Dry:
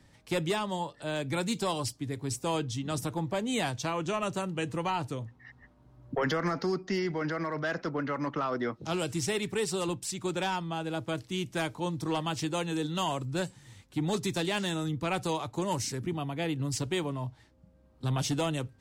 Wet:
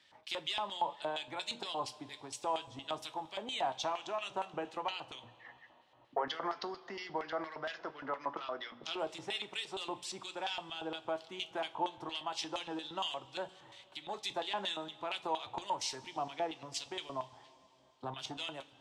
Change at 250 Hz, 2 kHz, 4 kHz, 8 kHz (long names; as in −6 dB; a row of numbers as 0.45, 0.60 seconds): −15.5, −7.5, −1.5, −10.5 decibels